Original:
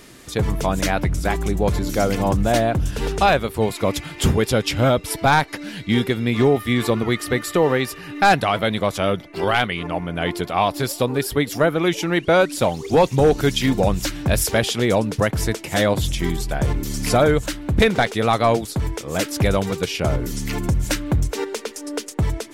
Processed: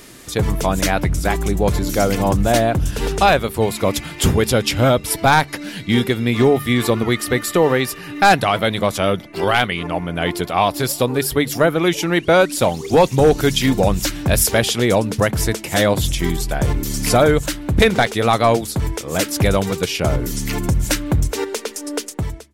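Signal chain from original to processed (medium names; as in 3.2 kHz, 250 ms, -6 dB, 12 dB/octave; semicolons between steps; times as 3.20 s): fade out at the end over 0.55 s; treble shelf 7.5 kHz +5.5 dB; de-hum 71.79 Hz, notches 3; trim +2.5 dB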